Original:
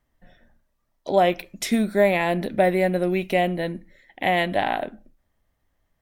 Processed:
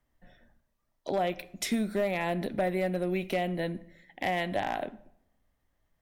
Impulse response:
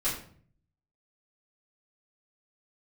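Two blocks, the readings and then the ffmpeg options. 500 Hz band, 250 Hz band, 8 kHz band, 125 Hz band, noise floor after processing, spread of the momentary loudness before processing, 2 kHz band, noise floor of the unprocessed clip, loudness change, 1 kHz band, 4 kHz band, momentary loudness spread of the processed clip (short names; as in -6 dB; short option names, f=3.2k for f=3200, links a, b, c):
-9.5 dB, -7.5 dB, -4.5 dB, -7.0 dB, -77 dBFS, 10 LU, -9.0 dB, -74 dBFS, -9.0 dB, -9.0 dB, -7.5 dB, 7 LU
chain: -filter_complex "[0:a]acrossover=split=130[a][b];[b]acompressor=threshold=-24dB:ratio=2.5[c];[a][c]amix=inputs=2:normalize=0,asoftclip=type=hard:threshold=-17dB,asplit=2[d][e];[1:a]atrim=start_sample=2205,asetrate=22491,aresample=44100[f];[e][f]afir=irnorm=-1:irlink=0,volume=-31dB[g];[d][g]amix=inputs=2:normalize=0,volume=-4dB"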